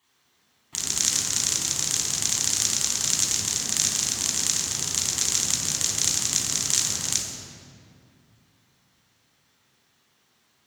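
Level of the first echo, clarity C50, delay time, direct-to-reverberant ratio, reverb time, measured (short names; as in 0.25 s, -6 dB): none, 0.5 dB, none, -4.5 dB, 2.4 s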